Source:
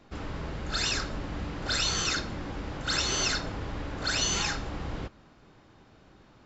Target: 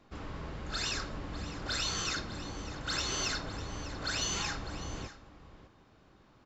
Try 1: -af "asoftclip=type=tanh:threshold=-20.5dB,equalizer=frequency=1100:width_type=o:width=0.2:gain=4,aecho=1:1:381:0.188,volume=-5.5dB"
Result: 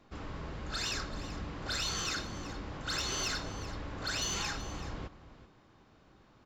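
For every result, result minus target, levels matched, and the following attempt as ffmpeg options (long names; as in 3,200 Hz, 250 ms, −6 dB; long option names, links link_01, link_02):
soft clipping: distortion +12 dB; echo 219 ms early
-af "asoftclip=type=tanh:threshold=-13.5dB,equalizer=frequency=1100:width_type=o:width=0.2:gain=4,aecho=1:1:381:0.188,volume=-5.5dB"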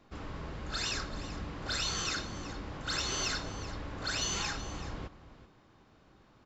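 echo 219 ms early
-af "asoftclip=type=tanh:threshold=-13.5dB,equalizer=frequency=1100:width_type=o:width=0.2:gain=4,aecho=1:1:600:0.188,volume=-5.5dB"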